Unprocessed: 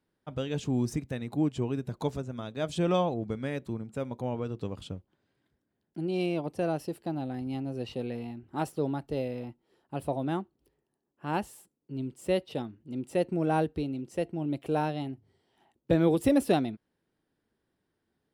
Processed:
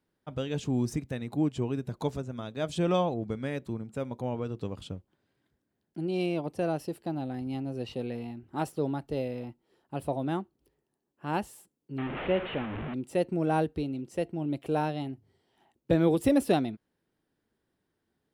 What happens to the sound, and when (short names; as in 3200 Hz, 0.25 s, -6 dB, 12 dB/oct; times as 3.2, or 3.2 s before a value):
11.98–12.94 delta modulation 16 kbps, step -29.5 dBFS